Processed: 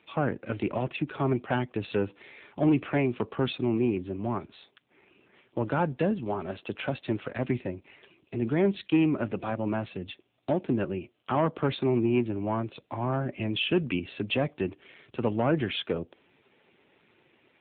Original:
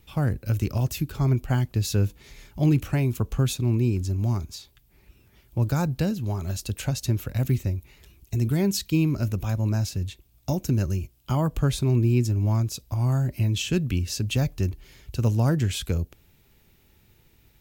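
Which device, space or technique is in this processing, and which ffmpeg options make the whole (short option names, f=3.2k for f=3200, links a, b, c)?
telephone: -af "highpass=330,lowpass=3.3k,asoftclip=type=tanh:threshold=-23.5dB,volume=7.5dB" -ar 8000 -c:a libopencore_amrnb -b:a 7400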